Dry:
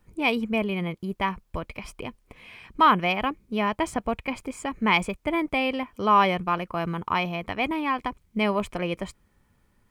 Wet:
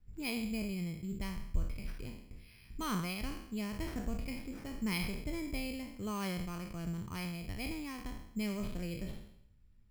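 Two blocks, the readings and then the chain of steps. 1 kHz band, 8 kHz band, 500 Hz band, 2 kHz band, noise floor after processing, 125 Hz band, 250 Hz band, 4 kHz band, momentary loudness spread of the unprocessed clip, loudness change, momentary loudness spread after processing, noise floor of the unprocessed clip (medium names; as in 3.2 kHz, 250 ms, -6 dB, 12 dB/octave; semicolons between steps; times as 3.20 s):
-23.5 dB, -3.5 dB, -17.0 dB, -16.5 dB, -60 dBFS, -6.0 dB, -9.5 dB, -12.5 dB, 16 LU, -14.0 dB, 9 LU, -67 dBFS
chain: spectral sustain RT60 0.72 s; amplifier tone stack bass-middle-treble 10-0-1; sample-and-hold 6×; trim +7 dB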